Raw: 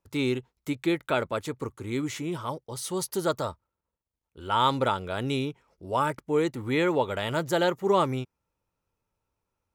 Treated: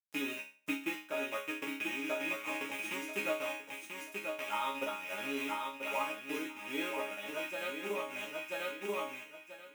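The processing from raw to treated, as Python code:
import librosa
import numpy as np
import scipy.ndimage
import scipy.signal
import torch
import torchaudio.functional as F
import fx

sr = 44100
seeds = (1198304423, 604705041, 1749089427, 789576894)

y = fx.rattle_buzz(x, sr, strikes_db=-42.0, level_db=-17.0)
y = fx.high_shelf(y, sr, hz=8200.0, db=-6.5)
y = fx.quant_dither(y, sr, seeds[0], bits=6, dither='none')
y = fx.transient(y, sr, attack_db=7, sustain_db=-8)
y = scipy.signal.sosfilt(scipy.signal.butter(2, 240.0, 'highpass', fs=sr, output='sos'), y)
y = fx.peak_eq(y, sr, hz=4400.0, db=-12.0, octaves=0.23)
y = fx.echo_feedback(y, sr, ms=986, feedback_pct=22, wet_db=-4.5)
y = fx.rider(y, sr, range_db=3, speed_s=0.5)
y = fx.resonator_bank(y, sr, root=56, chord='sus4', decay_s=0.42)
y = fx.am_noise(y, sr, seeds[1], hz=5.7, depth_pct=50)
y = y * librosa.db_to_amplitude(8.0)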